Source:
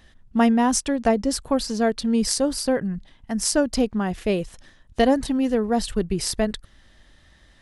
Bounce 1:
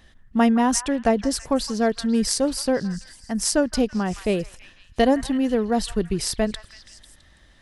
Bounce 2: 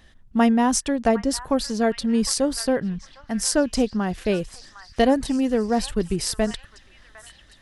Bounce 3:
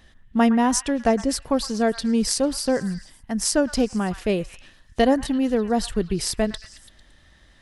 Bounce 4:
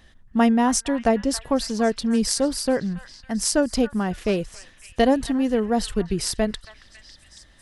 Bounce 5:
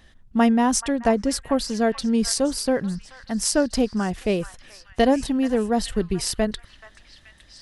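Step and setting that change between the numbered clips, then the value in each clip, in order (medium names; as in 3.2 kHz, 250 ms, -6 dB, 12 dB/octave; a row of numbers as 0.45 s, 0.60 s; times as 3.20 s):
repeats whose band climbs or falls, time: 165 ms, 756 ms, 112 ms, 276 ms, 430 ms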